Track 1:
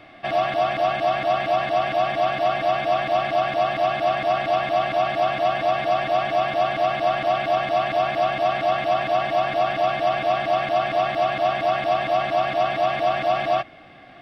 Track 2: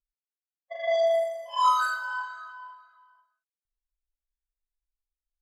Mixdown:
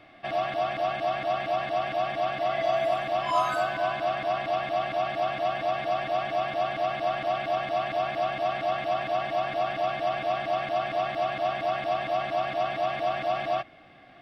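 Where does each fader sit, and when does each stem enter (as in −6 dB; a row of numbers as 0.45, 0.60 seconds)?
−6.5, −5.5 decibels; 0.00, 1.70 seconds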